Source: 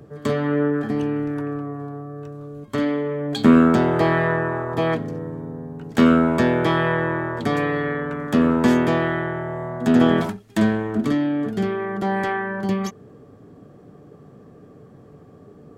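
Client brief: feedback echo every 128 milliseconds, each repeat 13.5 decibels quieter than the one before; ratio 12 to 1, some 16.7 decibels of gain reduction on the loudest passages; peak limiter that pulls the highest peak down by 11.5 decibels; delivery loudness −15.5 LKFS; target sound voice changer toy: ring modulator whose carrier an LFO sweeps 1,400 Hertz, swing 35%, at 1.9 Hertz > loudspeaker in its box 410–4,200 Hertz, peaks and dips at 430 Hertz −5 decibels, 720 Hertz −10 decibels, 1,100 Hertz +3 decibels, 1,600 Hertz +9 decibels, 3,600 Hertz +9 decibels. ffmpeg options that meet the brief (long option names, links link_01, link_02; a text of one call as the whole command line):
ffmpeg -i in.wav -af "acompressor=threshold=-26dB:ratio=12,alimiter=limit=-24dB:level=0:latency=1,aecho=1:1:128|256:0.211|0.0444,aeval=exprs='val(0)*sin(2*PI*1400*n/s+1400*0.35/1.9*sin(2*PI*1.9*n/s))':channel_layout=same,highpass=410,equalizer=frequency=430:width_type=q:width=4:gain=-5,equalizer=frequency=720:width_type=q:width=4:gain=-10,equalizer=frequency=1100:width_type=q:width=4:gain=3,equalizer=frequency=1600:width_type=q:width=4:gain=9,equalizer=frequency=3600:width_type=q:width=4:gain=9,lowpass=frequency=4200:width=0.5412,lowpass=frequency=4200:width=1.3066,volume=14dB" out.wav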